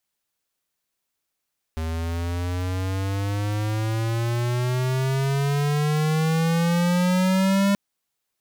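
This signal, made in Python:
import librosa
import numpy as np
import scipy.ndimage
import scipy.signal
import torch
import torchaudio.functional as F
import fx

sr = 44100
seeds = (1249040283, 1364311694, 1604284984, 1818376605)

y = fx.riser_tone(sr, length_s=5.98, level_db=-19.0, wave='square', hz=79.6, rise_st=16.0, swell_db=8.0)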